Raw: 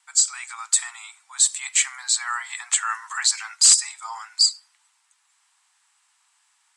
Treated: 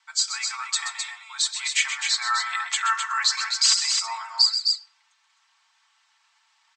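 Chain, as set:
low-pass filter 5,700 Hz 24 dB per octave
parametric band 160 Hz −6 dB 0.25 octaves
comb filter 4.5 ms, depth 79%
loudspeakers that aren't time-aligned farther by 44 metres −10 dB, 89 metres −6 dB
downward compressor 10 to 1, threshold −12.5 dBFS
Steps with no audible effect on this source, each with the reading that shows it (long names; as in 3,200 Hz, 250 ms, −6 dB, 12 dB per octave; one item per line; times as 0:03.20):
parametric band 160 Hz: nothing at its input below 680 Hz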